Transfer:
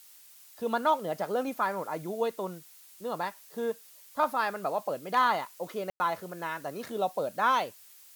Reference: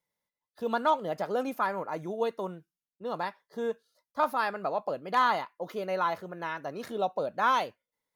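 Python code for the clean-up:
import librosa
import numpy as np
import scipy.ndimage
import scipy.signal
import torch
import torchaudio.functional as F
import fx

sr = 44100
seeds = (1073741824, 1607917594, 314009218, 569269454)

y = fx.fix_ambience(x, sr, seeds[0], print_start_s=0.01, print_end_s=0.51, start_s=5.9, end_s=6.0)
y = fx.noise_reduce(y, sr, print_start_s=0.01, print_end_s=0.51, reduce_db=30.0)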